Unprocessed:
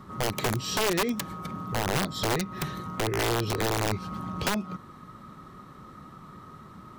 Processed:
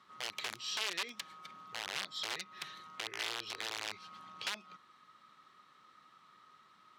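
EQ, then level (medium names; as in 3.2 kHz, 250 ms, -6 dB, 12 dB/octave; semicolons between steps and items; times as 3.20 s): band-pass filter 3.3 kHz, Q 1.1; -4.0 dB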